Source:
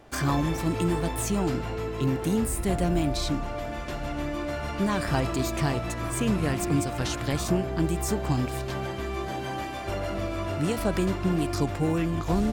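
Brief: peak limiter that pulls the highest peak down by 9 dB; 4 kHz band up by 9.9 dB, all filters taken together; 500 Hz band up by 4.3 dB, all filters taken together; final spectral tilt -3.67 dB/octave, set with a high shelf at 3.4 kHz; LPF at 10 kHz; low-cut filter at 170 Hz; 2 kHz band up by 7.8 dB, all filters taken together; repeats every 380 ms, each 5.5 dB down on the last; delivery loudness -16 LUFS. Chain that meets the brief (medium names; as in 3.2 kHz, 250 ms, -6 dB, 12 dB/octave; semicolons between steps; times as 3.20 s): high-pass 170 Hz; low-pass 10 kHz; peaking EQ 500 Hz +5.5 dB; peaking EQ 2 kHz +6 dB; treble shelf 3.4 kHz +6.5 dB; peaking EQ 4 kHz +6 dB; peak limiter -15 dBFS; feedback delay 380 ms, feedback 53%, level -5.5 dB; trim +9 dB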